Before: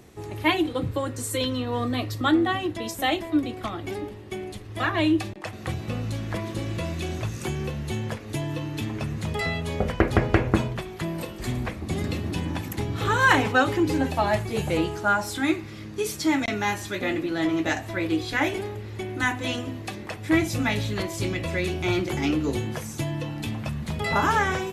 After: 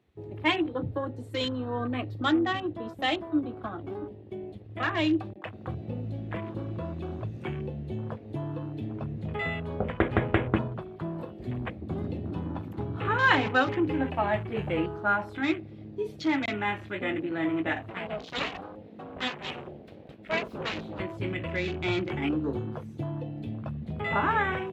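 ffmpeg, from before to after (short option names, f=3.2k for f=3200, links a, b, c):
-filter_complex "[0:a]asettb=1/sr,asplit=3[a][b][c];[a]atrim=end=17.904[d];[b]atrim=start=17.9:end=21,asetpts=PTS-STARTPTS,afade=t=in:d=0.004:c=qsin,afade=t=out:st=3.096:d=0.004:c=qsin,aeval=exprs='abs(val(0))':c=same[e];[c]atrim=start=20.996[f];[d][e]acrossfade=d=0.004:c1=hsin:c2=qsin[g];[g][f]acrossfade=d=0.004:c1=qsin:c2=hsin,highpass=77,highshelf=f=4.8k:t=q:w=1.5:g=-10,afwtdn=0.0178,volume=-4dB"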